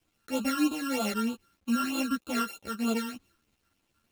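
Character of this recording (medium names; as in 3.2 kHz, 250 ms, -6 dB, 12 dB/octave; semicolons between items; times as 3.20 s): a buzz of ramps at a fixed pitch in blocks of 32 samples; phasing stages 12, 3.2 Hz, lowest notch 710–1900 Hz; a quantiser's noise floor 12-bit, dither none; a shimmering, thickened sound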